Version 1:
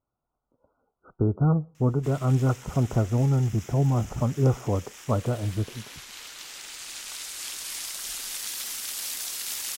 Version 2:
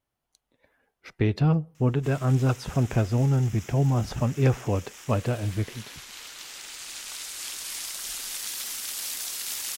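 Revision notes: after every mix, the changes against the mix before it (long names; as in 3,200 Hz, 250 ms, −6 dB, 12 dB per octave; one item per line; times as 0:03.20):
speech: remove linear-phase brick-wall low-pass 1,500 Hz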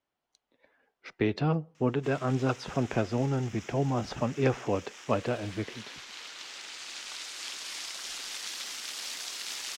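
master: add three-way crossover with the lows and the highs turned down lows −13 dB, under 200 Hz, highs −19 dB, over 6,600 Hz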